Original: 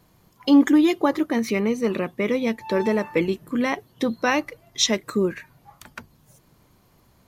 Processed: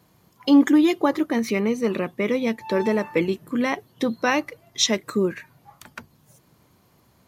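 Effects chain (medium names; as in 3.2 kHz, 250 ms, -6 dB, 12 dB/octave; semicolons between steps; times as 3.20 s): high-pass 76 Hz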